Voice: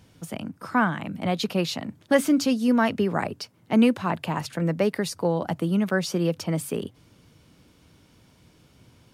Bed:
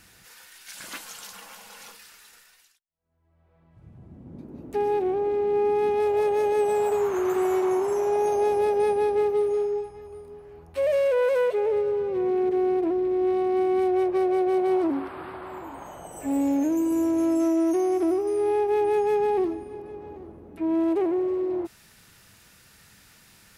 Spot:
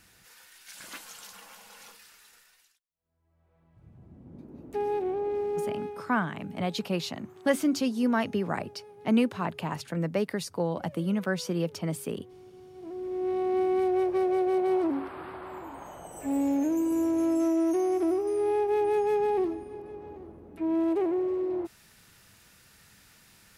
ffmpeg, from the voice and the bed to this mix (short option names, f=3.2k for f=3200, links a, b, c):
-filter_complex "[0:a]adelay=5350,volume=-5dB[a];[1:a]volume=19.5dB,afade=t=out:st=5.37:d=0.72:silence=0.0749894,afade=t=in:st=12.74:d=0.79:silence=0.0595662[b];[a][b]amix=inputs=2:normalize=0"